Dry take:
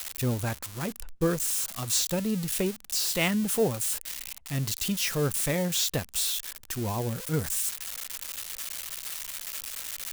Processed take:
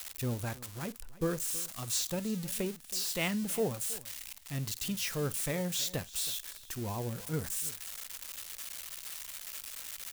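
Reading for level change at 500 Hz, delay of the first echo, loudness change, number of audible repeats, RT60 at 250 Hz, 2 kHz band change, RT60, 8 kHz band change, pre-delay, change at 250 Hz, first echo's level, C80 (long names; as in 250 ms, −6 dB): −6.5 dB, 50 ms, −6.5 dB, 2, no reverb audible, −6.5 dB, no reverb audible, −6.5 dB, no reverb audible, −6.5 dB, −19.0 dB, no reverb audible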